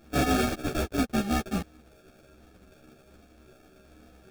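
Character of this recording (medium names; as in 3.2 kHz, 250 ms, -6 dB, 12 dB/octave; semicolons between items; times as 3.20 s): a buzz of ramps at a fixed pitch in blocks of 64 samples; phasing stages 6, 1.3 Hz, lowest notch 480–1200 Hz; aliases and images of a low sample rate 1 kHz, jitter 0%; a shimmering, thickened sound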